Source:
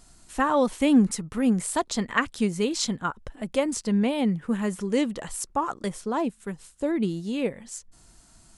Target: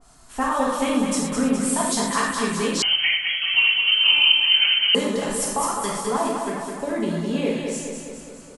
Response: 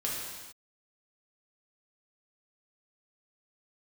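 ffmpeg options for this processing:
-filter_complex "[0:a]equalizer=f=920:t=o:w=1.3:g=9.5,acompressor=threshold=-22dB:ratio=6,aecho=1:1:208|416|624|832|1040|1248|1456|1664:0.562|0.337|0.202|0.121|0.0729|0.0437|0.0262|0.0157[a];[1:a]atrim=start_sample=2205,afade=t=out:st=0.18:d=0.01,atrim=end_sample=8379[b];[a][b]afir=irnorm=-1:irlink=0,asettb=1/sr,asplit=3[c][d][e];[c]atrim=end=2.824[f];[d]atrim=start=2.82:end=4.95,asetpts=PTS-STARTPTS,afade=t=in:d=0.004:c=qsin,afade=t=out:st=2.126:d=0.004:c=qsin,lowpass=f=2.8k:t=q:w=0.5098,lowpass=f=2.8k:t=q:w=0.6013,lowpass=f=2.8k:t=q:w=0.9,lowpass=f=2.8k:t=q:w=2.563,afreqshift=-3300[g];[e]atrim=start=4.946[h];[f][g]acrossfade=d=0.004:c1=hsin:c2=qsin[i];[i][h]acrossfade=d=0.004:c1=qsin:c2=hsin,adynamicequalizer=threshold=0.0251:dfrequency=2100:dqfactor=0.7:tfrequency=2100:tqfactor=0.7:attack=5:release=100:ratio=0.375:range=3.5:mode=boostabove:tftype=highshelf,volume=-2dB"

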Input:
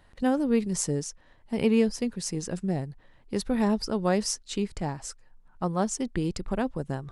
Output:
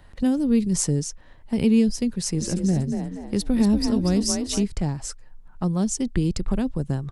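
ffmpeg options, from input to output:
-filter_complex "[0:a]lowshelf=f=160:g=6,asplit=3[a][b][c];[a]afade=t=out:st=2.37:d=0.02[d];[b]asplit=5[e][f][g][h][i];[f]adelay=237,afreqshift=39,volume=-6dB[j];[g]adelay=474,afreqshift=78,volume=-15.9dB[k];[h]adelay=711,afreqshift=117,volume=-25.8dB[l];[i]adelay=948,afreqshift=156,volume=-35.7dB[m];[e][j][k][l][m]amix=inputs=5:normalize=0,afade=t=in:st=2.37:d=0.02,afade=t=out:st=4.63:d=0.02[n];[c]afade=t=in:st=4.63:d=0.02[o];[d][n][o]amix=inputs=3:normalize=0,acrossover=split=340|3000[p][q][r];[q]acompressor=threshold=-39dB:ratio=6[s];[p][s][r]amix=inputs=3:normalize=0,volume=5dB"

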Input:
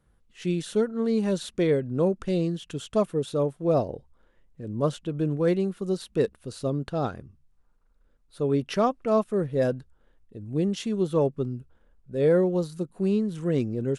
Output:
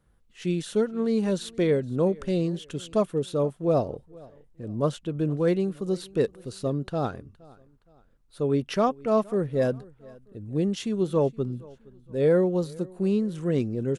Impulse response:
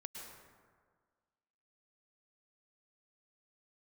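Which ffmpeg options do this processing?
-af "aecho=1:1:468|936:0.0668|0.0254"

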